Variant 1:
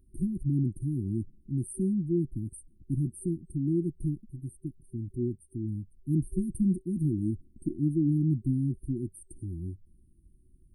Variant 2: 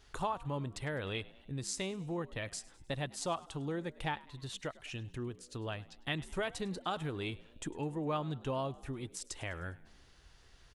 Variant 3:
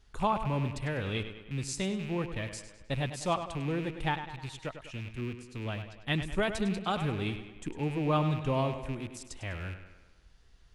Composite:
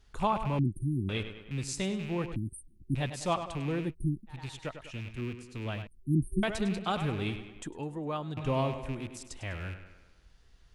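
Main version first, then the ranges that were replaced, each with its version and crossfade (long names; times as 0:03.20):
3
0:00.59–0:01.09: punch in from 1
0:02.36–0:02.95: punch in from 1
0:03.87–0:04.34: punch in from 1, crossfade 0.16 s
0:05.87–0:06.43: punch in from 1
0:07.62–0:08.37: punch in from 2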